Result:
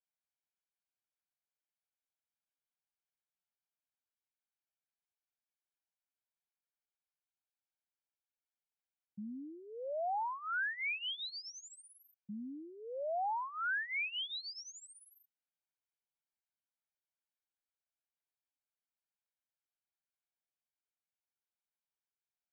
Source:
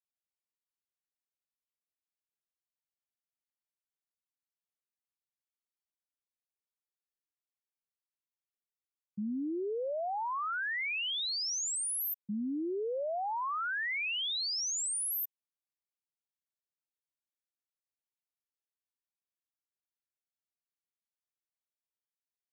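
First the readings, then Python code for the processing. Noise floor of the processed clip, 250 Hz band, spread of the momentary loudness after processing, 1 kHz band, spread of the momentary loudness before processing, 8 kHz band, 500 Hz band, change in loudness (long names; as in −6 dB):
below −85 dBFS, −10.5 dB, 15 LU, −2.5 dB, 5 LU, −20.0 dB, −6.0 dB, −5.5 dB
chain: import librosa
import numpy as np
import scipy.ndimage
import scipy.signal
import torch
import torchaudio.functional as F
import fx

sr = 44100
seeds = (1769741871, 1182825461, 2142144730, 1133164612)

y = scipy.signal.sosfilt(scipy.signal.butter(2, 2800.0, 'lowpass', fs=sr, output='sos'), x)
y = fx.low_shelf(y, sr, hz=390.0, db=-7.5)
y = y + 0.74 * np.pad(y, (int(1.3 * sr / 1000.0), 0))[:len(y)]
y = y * 10.0 ** (-3.5 / 20.0)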